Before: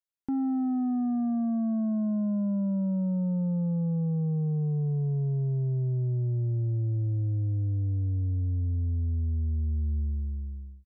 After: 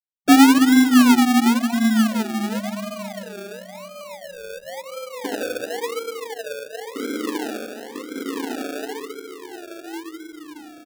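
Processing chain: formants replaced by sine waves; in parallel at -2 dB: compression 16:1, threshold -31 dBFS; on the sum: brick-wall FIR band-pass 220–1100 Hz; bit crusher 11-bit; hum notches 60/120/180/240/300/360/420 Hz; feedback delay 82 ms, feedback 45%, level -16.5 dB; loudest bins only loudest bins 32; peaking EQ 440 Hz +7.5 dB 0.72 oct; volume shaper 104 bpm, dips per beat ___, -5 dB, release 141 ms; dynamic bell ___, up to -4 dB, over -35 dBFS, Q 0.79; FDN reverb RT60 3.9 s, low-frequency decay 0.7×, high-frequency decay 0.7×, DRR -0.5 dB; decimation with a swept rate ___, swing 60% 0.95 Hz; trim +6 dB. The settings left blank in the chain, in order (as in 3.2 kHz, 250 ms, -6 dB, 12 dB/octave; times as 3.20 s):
1, 620 Hz, 34×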